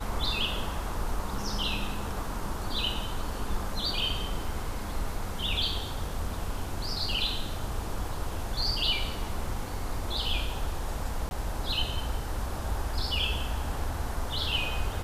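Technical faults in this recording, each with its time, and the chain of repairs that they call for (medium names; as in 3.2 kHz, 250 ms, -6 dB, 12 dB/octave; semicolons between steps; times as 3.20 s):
11.29–11.31 s: dropout 21 ms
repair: interpolate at 11.29 s, 21 ms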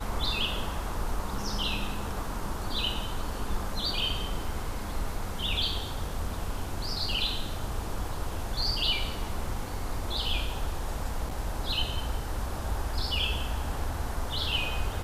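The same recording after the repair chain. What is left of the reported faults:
nothing left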